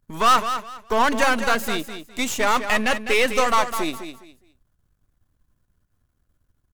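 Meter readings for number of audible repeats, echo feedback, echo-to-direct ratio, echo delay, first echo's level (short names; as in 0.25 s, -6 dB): 3, 24%, -9.0 dB, 0.205 s, -9.5 dB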